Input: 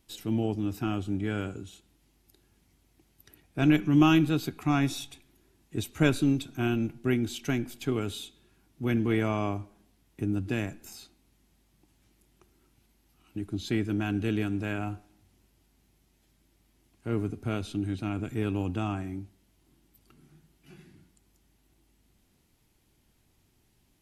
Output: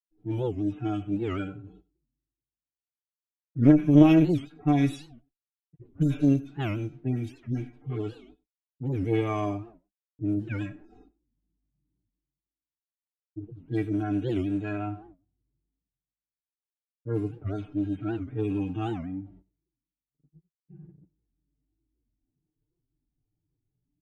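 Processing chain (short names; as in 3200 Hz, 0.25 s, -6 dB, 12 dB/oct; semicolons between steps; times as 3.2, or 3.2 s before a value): median-filter separation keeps harmonic; gate -54 dBFS, range -60 dB; low-pass opened by the level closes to 330 Hz, open at -24 dBFS; comb 6.7 ms, depth 92%; reverse; upward compressor, threshold -40 dBFS; reverse; added harmonics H 2 -11 dB, 3 -26 dB, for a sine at -6.5 dBFS; on a send: echo 96 ms -22.5 dB; on the sum: record warp 78 rpm, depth 250 cents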